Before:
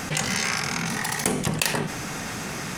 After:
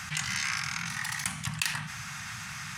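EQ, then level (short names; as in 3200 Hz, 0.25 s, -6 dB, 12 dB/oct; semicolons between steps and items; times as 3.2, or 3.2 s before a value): HPF 74 Hz; Chebyshev band-stop 120–1300 Hz, order 2; high shelf 11000 Hz -8 dB; -4.0 dB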